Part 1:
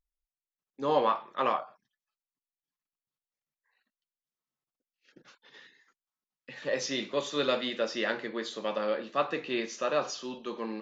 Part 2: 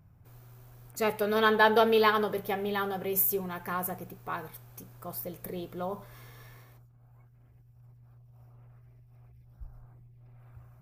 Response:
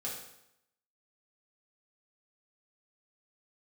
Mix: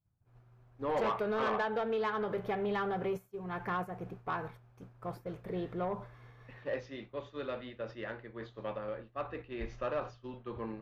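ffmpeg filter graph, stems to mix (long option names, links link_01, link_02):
-filter_complex "[0:a]volume=-3.5dB[link_01];[1:a]highshelf=frequency=6600:gain=11.5,acompressor=threshold=-29dB:ratio=16,volume=2dB,asplit=2[link_02][link_03];[link_03]apad=whole_len=476847[link_04];[link_01][link_04]sidechaingate=range=-6dB:threshold=-52dB:ratio=16:detection=peak[link_05];[link_05][link_02]amix=inputs=2:normalize=0,lowpass=2100,agate=range=-33dB:threshold=-42dB:ratio=3:detection=peak,asoftclip=type=tanh:threshold=-26dB"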